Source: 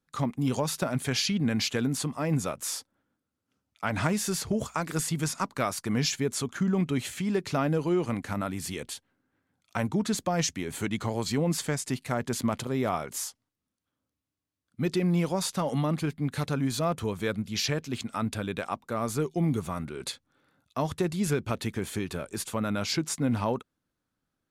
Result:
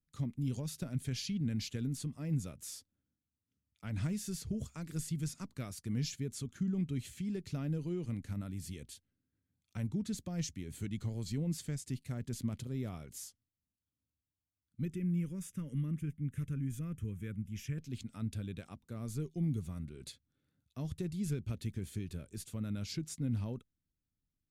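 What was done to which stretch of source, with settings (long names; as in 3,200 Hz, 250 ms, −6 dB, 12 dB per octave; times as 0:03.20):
0:14.85–0:17.78: phaser with its sweep stopped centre 1,800 Hz, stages 4
whole clip: guitar amp tone stack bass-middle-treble 10-0-1; level +8 dB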